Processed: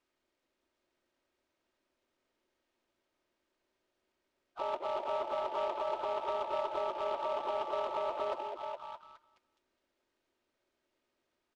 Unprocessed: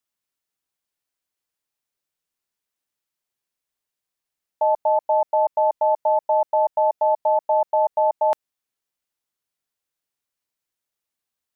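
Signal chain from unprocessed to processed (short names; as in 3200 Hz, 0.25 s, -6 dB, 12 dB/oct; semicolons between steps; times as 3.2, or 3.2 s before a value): bin magnitudes rounded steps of 30 dB; negative-ratio compressor -32 dBFS, ratio -1; bell 370 Hz +11 dB 0.46 oct; de-hum 303.7 Hz, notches 25; harmoniser -7 st -5 dB, +5 st -3 dB, +7 st -5 dB; air absorption 190 m; comb 3.2 ms, depth 45%; delay with a stepping band-pass 0.208 s, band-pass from 410 Hz, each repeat 0.7 oct, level -1 dB; noise-modulated delay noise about 1800 Hz, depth 0.031 ms; gain -7.5 dB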